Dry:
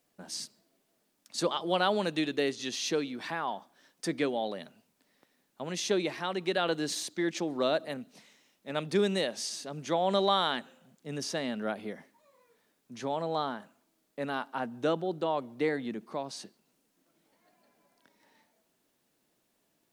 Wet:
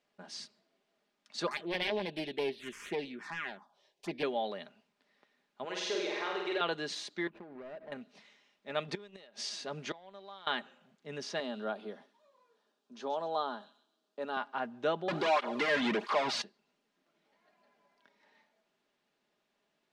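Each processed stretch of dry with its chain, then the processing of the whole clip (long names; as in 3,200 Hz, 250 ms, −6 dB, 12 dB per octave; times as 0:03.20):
0:01.47–0:04.23: phase distortion by the signal itself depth 0.7 ms + parametric band 360 Hz +4.5 dB 0.28 octaves + phaser swept by the level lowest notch 200 Hz, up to 1,300 Hz, full sweep at −29 dBFS
0:05.65–0:06.61: low shelf with overshoot 260 Hz −12 dB, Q 1.5 + downward compressor 4 to 1, threshold −31 dBFS + flutter between parallel walls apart 8.3 metres, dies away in 1.1 s
0:07.27–0:07.92: running median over 41 samples + downward compressor 12 to 1, threshold −39 dBFS + parametric band 6,400 Hz −14.5 dB 1.6 octaves
0:08.88–0:10.47: gate with flip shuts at −20 dBFS, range −26 dB + leveller curve on the samples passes 1
0:11.40–0:14.37: high-pass filter 200 Hz 24 dB per octave + parametric band 2,100 Hz −13.5 dB 0.52 octaves + delay with a high-pass on its return 132 ms, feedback 35%, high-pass 4,000 Hz, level −8 dB
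0:15.08–0:16.42: mid-hump overdrive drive 36 dB, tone 6,200 Hz, clips at −18 dBFS + through-zero flanger with one copy inverted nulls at 1.5 Hz, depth 2.8 ms
whole clip: low-pass filter 3,800 Hz 12 dB per octave; low-shelf EQ 370 Hz −10 dB; comb filter 4.9 ms, depth 39%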